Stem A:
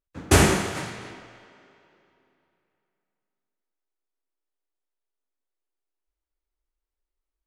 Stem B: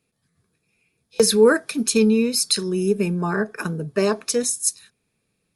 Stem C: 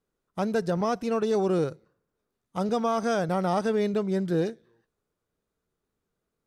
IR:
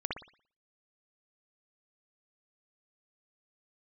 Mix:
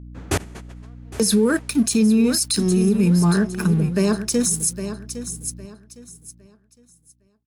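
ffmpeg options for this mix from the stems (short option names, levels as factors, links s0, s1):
-filter_complex "[0:a]volume=0.794,asplit=2[s0][s1];[s1]volume=0.1[s2];[1:a]firequalizer=gain_entry='entry(110,0);entry(160,10);entry(470,-3);entry(7600,5)':delay=0.05:min_phase=1,aeval=exprs='sgn(val(0))*max(abs(val(0))-0.0126,0)':c=same,aeval=exprs='val(0)+0.0112*(sin(2*PI*60*n/s)+sin(2*PI*2*60*n/s)/2+sin(2*PI*3*60*n/s)/3+sin(2*PI*4*60*n/s)/4+sin(2*PI*5*60*n/s)/5)':c=same,volume=1.26,asplit=2[s3][s4];[s4]volume=0.211[s5];[2:a]acompressor=threshold=0.0398:ratio=12,acrusher=bits=4:dc=4:mix=0:aa=0.000001,adynamicsmooth=sensitivity=3:basefreq=2200,volume=0.126,asplit=2[s6][s7];[s7]apad=whole_len=329156[s8];[s0][s8]sidechaingate=range=0.0398:threshold=0.00355:ratio=16:detection=peak[s9];[s2][s5]amix=inputs=2:normalize=0,aecho=0:1:809|1618|2427|3236:1|0.26|0.0676|0.0176[s10];[s9][s3][s6][s10]amix=inputs=4:normalize=0,alimiter=limit=0.316:level=0:latency=1:release=37"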